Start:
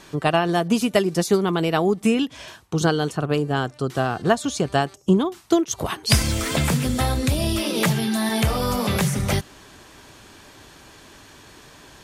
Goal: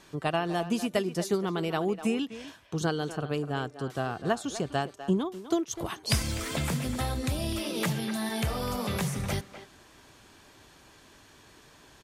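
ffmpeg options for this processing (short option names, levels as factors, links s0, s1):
-filter_complex "[0:a]asplit=2[s0][s1];[s1]adelay=250,highpass=300,lowpass=3400,asoftclip=type=hard:threshold=0.237,volume=0.282[s2];[s0][s2]amix=inputs=2:normalize=0,volume=0.355"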